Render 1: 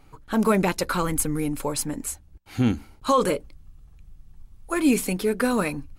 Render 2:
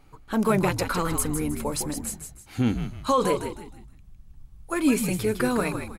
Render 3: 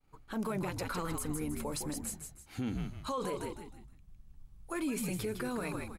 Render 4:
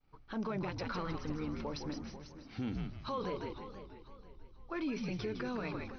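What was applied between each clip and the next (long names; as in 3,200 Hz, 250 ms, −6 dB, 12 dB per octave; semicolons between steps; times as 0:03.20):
echo with shifted repeats 157 ms, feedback 35%, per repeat −72 Hz, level −7.5 dB; level −2 dB
mains-hum notches 60/120 Hz; brickwall limiter −21 dBFS, peak gain reduction 9.5 dB; downward expander −47 dBFS; level −6.5 dB
linear-phase brick-wall low-pass 6,100 Hz; feedback echo with a swinging delay time 492 ms, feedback 36%, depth 133 cents, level −13 dB; level −2 dB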